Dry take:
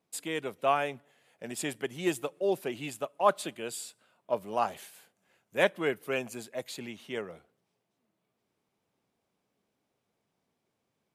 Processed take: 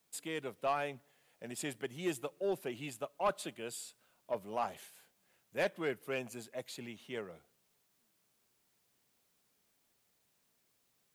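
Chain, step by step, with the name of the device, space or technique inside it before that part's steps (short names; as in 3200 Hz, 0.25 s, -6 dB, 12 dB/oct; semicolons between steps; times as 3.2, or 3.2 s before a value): open-reel tape (soft clip -18.5 dBFS, distortion -15 dB; bell 120 Hz +2.5 dB; white noise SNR 35 dB); gain -5.5 dB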